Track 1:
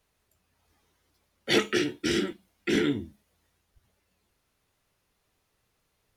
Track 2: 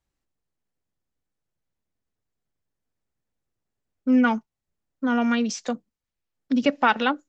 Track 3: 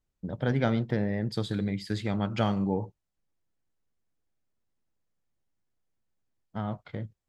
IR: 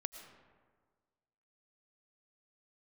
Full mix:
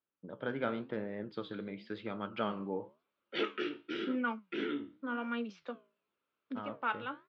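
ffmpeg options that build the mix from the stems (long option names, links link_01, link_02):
-filter_complex "[0:a]adelay=1850,volume=-4dB[link_01];[1:a]volume=-7dB[link_02];[2:a]volume=0dB,asplit=2[link_03][link_04];[link_04]apad=whole_len=321412[link_05];[link_02][link_05]sidechaincompress=threshold=-38dB:ratio=8:attack=24:release=294[link_06];[link_01][link_06][link_03]amix=inputs=3:normalize=0,flanger=delay=8.5:depth=9.3:regen=74:speed=0.93:shape=sinusoidal,highpass=310,equalizer=frequency=750:width_type=q:width=4:gain=-8,equalizer=frequency=1300:width_type=q:width=4:gain=5,equalizer=frequency=1900:width_type=q:width=4:gain=-7,lowpass=frequency=3200:width=0.5412,lowpass=frequency=3200:width=1.3066"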